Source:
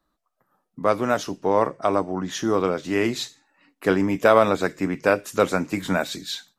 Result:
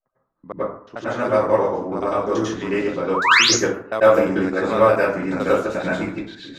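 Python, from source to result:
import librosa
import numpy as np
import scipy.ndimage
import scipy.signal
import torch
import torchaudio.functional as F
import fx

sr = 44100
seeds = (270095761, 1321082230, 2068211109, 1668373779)

y = fx.block_reorder(x, sr, ms=87.0, group=5)
y = fx.spec_paint(y, sr, seeds[0], shape='rise', start_s=3.14, length_s=0.31, low_hz=880.0, high_hz=7200.0, level_db=-14.0)
y = fx.env_lowpass(y, sr, base_hz=1600.0, full_db=-14.5)
y = fx.rev_plate(y, sr, seeds[1], rt60_s=0.56, hf_ratio=0.5, predelay_ms=85, drr_db=-9.5)
y = y * librosa.db_to_amplitude(-8.5)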